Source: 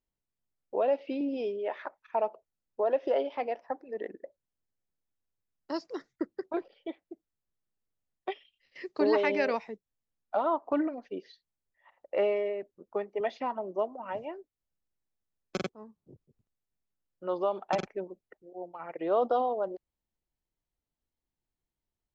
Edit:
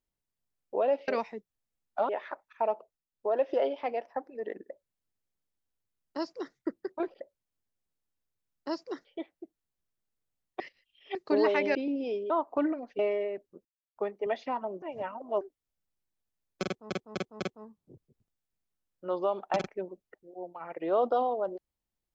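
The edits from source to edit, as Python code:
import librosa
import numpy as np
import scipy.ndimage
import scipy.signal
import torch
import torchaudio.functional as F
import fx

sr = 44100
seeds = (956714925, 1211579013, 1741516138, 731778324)

y = fx.edit(x, sr, fx.swap(start_s=1.08, length_s=0.55, other_s=9.44, other_length_s=1.01),
    fx.fade_down_up(start_s=2.29, length_s=0.65, db=-9.5, fade_s=0.29, curve='qsin'),
    fx.duplicate(start_s=4.23, length_s=1.85, to_s=6.74),
    fx.reverse_span(start_s=8.29, length_s=0.55),
    fx.cut(start_s=11.14, length_s=1.1),
    fx.insert_silence(at_s=12.9, length_s=0.31),
    fx.reverse_span(start_s=13.76, length_s=0.59),
    fx.repeat(start_s=15.59, length_s=0.25, count=4), tone=tone)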